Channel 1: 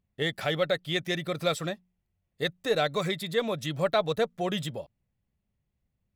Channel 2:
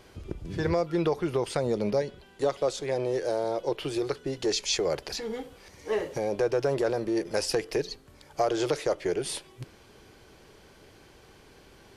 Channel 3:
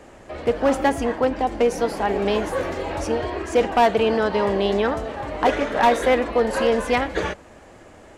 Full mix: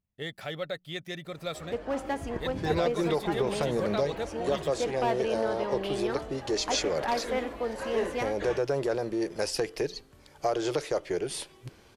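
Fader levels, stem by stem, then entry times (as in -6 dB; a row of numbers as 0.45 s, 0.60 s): -8.0 dB, -2.0 dB, -12.5 dB; 0.00 s, 2.05 s, 1.25 s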